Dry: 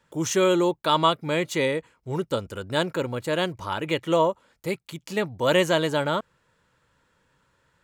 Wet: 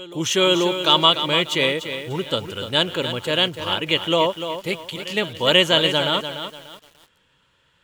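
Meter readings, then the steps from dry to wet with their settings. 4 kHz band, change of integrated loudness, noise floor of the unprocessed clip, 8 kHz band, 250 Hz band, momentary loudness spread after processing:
+13.5 dB, +5.5 dB, -69 dBFS, +3.0 dB, +1.5 dB, 13 LU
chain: peaking EQ 3.1 kHz +14 dB 0.66 oct; reverse echo 489 ms -19.5 dB; bit-crushed delay 294 ms, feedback 35%, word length 7-bit, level -9 dB; trim +1 dB

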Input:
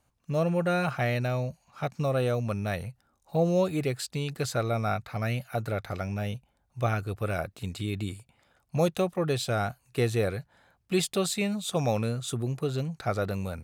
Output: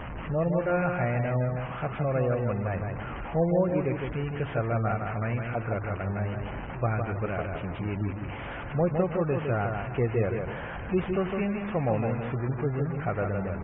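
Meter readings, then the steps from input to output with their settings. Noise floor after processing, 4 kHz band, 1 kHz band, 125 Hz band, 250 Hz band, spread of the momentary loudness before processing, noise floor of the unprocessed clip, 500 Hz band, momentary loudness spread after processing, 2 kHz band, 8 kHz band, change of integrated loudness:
-37 dBFS, -12.5 dB, +1.0 dB, +1.5 dB, +1.0 dB, 9 LU, -72 dBFS, +0.5 dB, 7 LU, +0.5 dB, under -40 dB, +0.5 dB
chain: one-bit delta coder 16 kbps, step -30.5 dBFS; mains buzz 50 Hz, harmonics 36, -52 dBFS -3 dB/octave; distance through air 260 m; on a send: feedback delay 159 ms, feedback 33%, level -5 dB; on the sum: spectral gate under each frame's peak -30 dB strong

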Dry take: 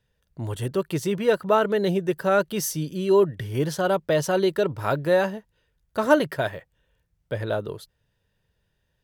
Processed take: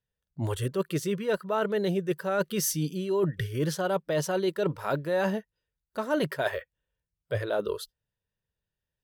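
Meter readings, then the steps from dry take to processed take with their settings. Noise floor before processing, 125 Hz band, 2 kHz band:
-73 dBFS, -2.5 dB, -5.0 dB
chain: spectral noise reduction 21 dB; reverse; compression 6:1, threshold -30 dBFS, peak gain reduction 17 dB; reverse; trim +5 dB

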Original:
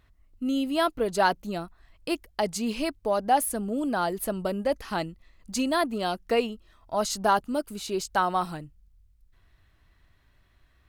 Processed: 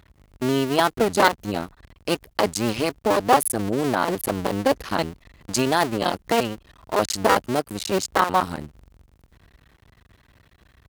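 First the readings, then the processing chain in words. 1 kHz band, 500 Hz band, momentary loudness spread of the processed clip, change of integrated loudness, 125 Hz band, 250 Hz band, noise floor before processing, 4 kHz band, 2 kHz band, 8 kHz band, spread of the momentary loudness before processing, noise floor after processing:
+4.5 dB, +5.0 dB, 10 LU, +5.0 dB, +9.0 dB, +4.0 dB, -63 dBFS, +6.0 dB, +6.5 dB, +5.5 dB, 11 LU, -62 dBFS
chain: cycle switcher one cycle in 2, muted; high-pass 44 Hz; in parallel at -2.5 dB: compression, threshold -40 dBFS, peak gain reduction 20.5 dB; on the sum: trim +6.5 dB

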